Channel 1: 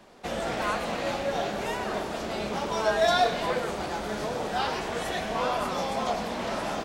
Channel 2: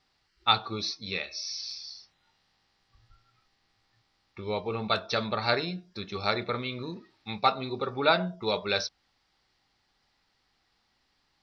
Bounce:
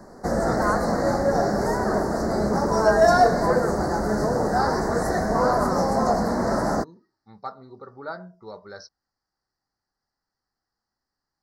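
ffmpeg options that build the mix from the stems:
ffmpeg -i stem1.wav -i stem2.wav -filter_complex "[0:a]lowshelf=frequency=480:gain=8,volume=-1dB[link_01];[1:a]volume=-16dB[link_02];[link_01][link_02]amix=inputs=2:normalize=0,asuperstop=centerf=2900:order=8:qfactor=1.1,acontrast=39" out.wav

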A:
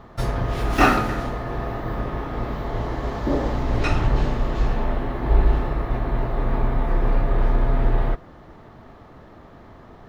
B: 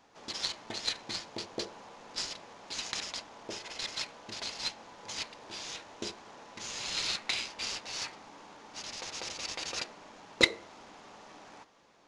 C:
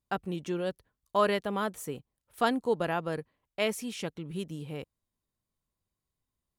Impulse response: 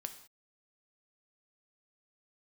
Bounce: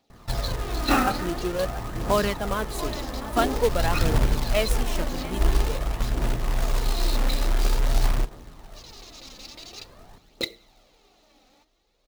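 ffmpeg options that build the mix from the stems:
-filter_complex "[0:a]adelay=100,volume=-9dB,asplit=3[link_01][link_02][link_03];[link_02]volume=-7dB[link_04];[link_03]volume=-21.5dB[link_05];[1:a]equalizer=frequency=1000:width_type=o:width=0.33:gain=-12,equalizer=frequency=1600:width_type=o:width=0.33:gain=-10,equalizer=frequency=4000:width_type=o:width=0.33:gain=8,volume=-9.5dB,asplit=2[link_06][link_07];[link_07]volume=-12.5dB[link_08];[2:a]adelay=950,volume=2dB,asplit=2[link_09][link_10];[link_10]volume=-15.5dB[link_11];[3:a]atrim=start_sample=2205[link_12];[link_04][link_08]amix=inputs=2:normalize=0[link_13];[link_13][link_12]afir=irnorm=-1:irlink=0[link_14];[link_05][link_11]amix=inputs=2:normalize=0,aecho=0:1:680|1360|2040|2720|3400|4080|4760|5440:1|0.54|0.292|0.157|0.085|0.0459|0.0248|0.0134[link_15];[link_01][link_06][link_09][link_14][link_15]amix=inputs=5:normalize=0,aphaser=in_gain=1:out_gain=1:delay=4:decay=0.44:speed=0.48:type=triangular,acrusher=bits=3:mode=log:mix=0:aa=0.000001"

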